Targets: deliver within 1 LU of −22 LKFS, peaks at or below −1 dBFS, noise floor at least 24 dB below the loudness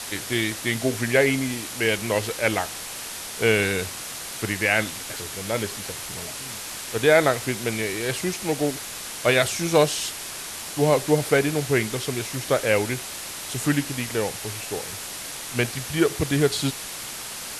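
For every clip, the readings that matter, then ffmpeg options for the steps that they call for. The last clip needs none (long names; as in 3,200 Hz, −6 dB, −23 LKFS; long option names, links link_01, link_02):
background noise floor −35 dBFS; target noise floor −49 dBFS; integrated loudness −24.5 LKFS; sample peak −6.0 dBFS; target loudness −22.0 LKFS
→ -af "afftdn=noise_reduction=14:noise_floor=-35"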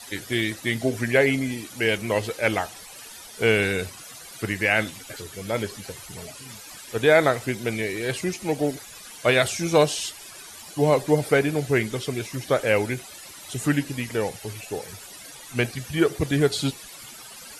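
background noise floor −43 dBFS; target noise floor −48 dBFS
→ -af "afftdn=noise_reduction=6:noise_floor=-43"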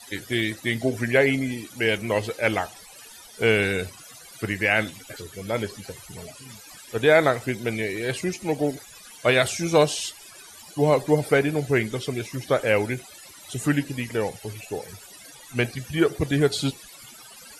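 background noise floor −46 dBFS; target noise floor −48 dBFS
→ -af "afftdn=noise_reduction=6:noise_floor=-46"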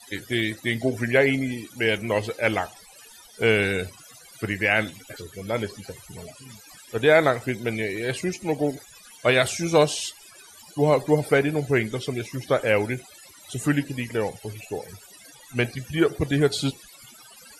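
background noise floor −49 dBFS; integrated loudness −24.0 LKFS; sample peak −6.0 dBFS; target loudness −22.0 LKFS
→ -af "volume=2dB"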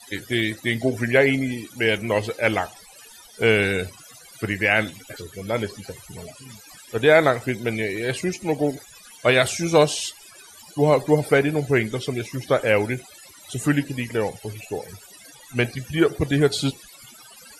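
integrated loudness −22.0 LKFS; sample peak −4.0 dBFS; background noise floor −47 dBFS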